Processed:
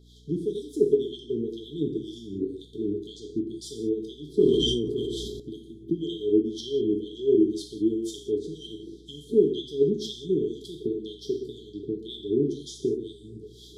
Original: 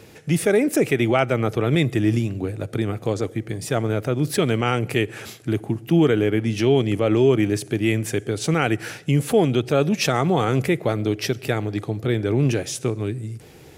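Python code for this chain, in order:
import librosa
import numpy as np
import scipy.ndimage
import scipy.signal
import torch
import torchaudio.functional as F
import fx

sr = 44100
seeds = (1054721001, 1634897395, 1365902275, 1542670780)

y = fx.recorder_agc(x, sr, target_db=-13.5, rise_db_per_s=18.0, max_gain_db=30)
y = fx.filter_lfo_bandpass(y, sr, shape='sine', hz=2.0, low_hz=340.0, high_hz=3100.0, q=2.0)
y = fx.brickwall_bandstop(y, sr, low_hz=450.0, high_hz=3100.0)
y = fx.rev_gated(y, sr, seeds[0], gate_ms=220, shape='falling', drr_db=1.0)
y = fx.add_hum(y, sr, base_hz=60, snr_db=26)
y = fx.sustainer(y, sr, db_per_s=24.0, at=(4.28, 5.4))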